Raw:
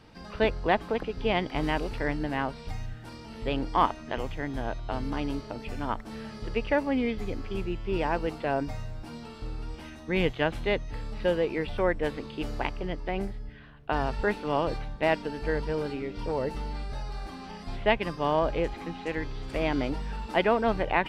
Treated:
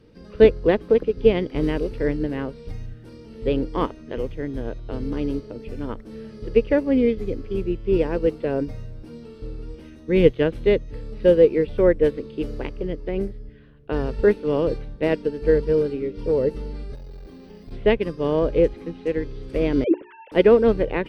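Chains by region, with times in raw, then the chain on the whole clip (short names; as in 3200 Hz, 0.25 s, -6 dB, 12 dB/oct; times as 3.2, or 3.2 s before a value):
16.95–17.72 bell 1300 Hz -5.5 dB 0.4 oct + tube stage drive 34 dB, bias 0.45 + careless resampling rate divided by 2×, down none, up hold
19.84–20.32 sine-wave speech + notches 60/120/180/240/300/360/420 Hz
whole clip: resonant low shelf 600 Hz +7 dB, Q 3; notch 7200 Hz, Q 8.1; upward expander 1.5:1, over -29 dBFS; gain +3 dB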